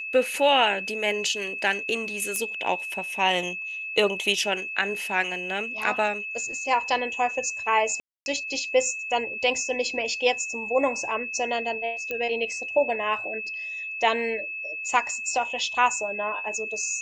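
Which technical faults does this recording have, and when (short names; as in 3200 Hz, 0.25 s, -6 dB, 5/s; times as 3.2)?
tone 2600 Hz -31 dBFS
2.36 pop -14 dBFS
8–8.26 gap 0.261 s
12.11 pop -16 dBFS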